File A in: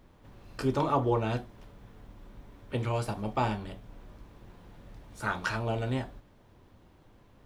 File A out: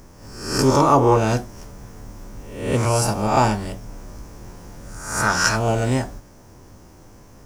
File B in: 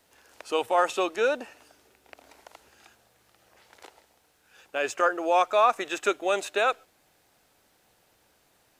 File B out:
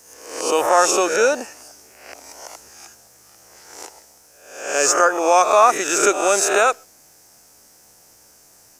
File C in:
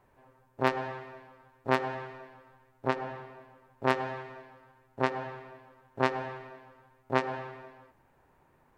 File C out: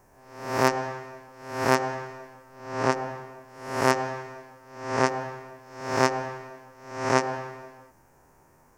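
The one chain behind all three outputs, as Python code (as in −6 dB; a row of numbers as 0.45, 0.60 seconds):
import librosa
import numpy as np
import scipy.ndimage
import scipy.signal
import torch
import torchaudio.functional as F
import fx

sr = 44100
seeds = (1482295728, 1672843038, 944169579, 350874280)

y = fx.spec_swells(x, sr, rise_s=0.69)
y = fx.high_shelf_res(y, sr, hz=4600.0, db=7.5, q=3.0)
y = librosa.util.normalize(y) * 10.0 ** (-1.5 / 20.0)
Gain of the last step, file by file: +10.0, +6.5, +4.0 decibels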